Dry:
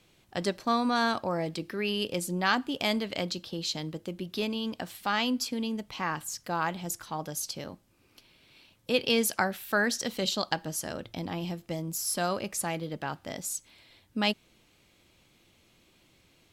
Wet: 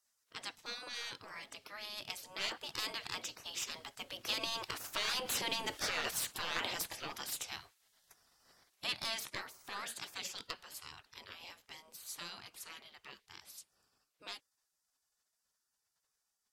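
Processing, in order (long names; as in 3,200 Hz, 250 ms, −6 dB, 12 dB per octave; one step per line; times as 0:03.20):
source passing by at 0:05.70, 7 m/s, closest 2.5 metres
dynamic equaliser 150 Hz, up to +3 dB, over −53 dBFS, Q 0.95
brickwall limiter −31.5 dBFS, peak gain reduction 11.5 dB
mid-hump overdrive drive 12 dB, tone 5,800 Hz, clips at −31 dBFS
gate on every frequency bin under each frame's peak −15 dB weak
level +14.5 dB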